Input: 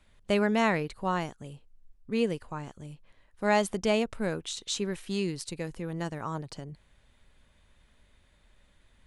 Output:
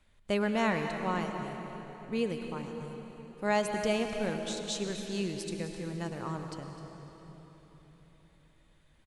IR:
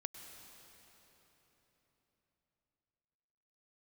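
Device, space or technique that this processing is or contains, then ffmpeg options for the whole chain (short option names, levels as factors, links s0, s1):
cave: -filter_complex "[0:a]aecho=1:1:256:0.188[s0];[1:a]atrim=start_sample=2205[s1];[s0][s1]afir=irnorm=-1:irlink=0"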